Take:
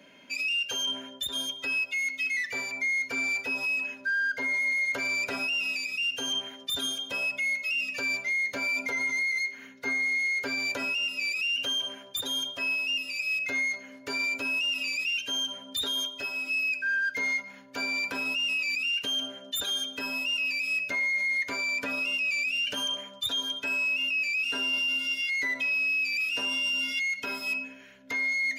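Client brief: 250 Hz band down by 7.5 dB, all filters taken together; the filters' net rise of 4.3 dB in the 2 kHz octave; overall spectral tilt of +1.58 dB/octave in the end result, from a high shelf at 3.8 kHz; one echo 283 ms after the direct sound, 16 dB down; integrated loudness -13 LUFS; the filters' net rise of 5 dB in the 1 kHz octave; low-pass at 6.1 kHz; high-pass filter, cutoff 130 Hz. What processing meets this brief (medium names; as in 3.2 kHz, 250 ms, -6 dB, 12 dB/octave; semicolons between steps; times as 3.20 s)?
high-pass 130 Hz; low-pass 6.1 kHz; peaking EQ 250 Hz -8 dB; peaking EQ 1 kHz +5 dB; peaking EQ 2 kHz +3 dB; treble shelf 3.8 kHz +5 dB; delay 283 ms -16 dB; trim +10.5 dB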